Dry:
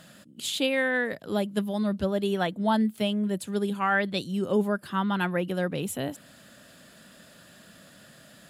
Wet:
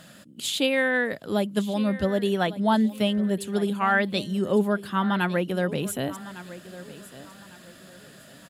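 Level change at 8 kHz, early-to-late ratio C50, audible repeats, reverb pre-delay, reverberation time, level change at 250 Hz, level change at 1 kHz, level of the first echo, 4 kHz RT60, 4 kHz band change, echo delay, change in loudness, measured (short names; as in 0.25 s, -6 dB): +2.5 dB, none, 2, none, none, +2.5 dB, +2.5 dB, -16.0 dB, none, +2.5 dB, 1.154 s, +2.5 dB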